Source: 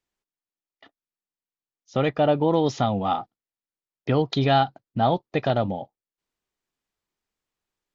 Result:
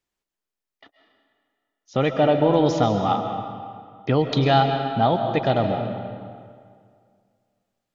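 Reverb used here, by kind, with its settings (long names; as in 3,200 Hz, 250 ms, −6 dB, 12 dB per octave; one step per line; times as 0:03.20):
comb and all-pass reverb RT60 2.1 s, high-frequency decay 0.75×, pre-delay 95 ms, DRR 5.5 dB
level +1.5 dB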